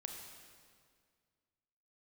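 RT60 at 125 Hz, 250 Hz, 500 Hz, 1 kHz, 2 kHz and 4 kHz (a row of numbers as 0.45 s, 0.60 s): 2.3 s, 2.2 s, 2.1 s, 1.9 s, 1.8 s, 1.7 s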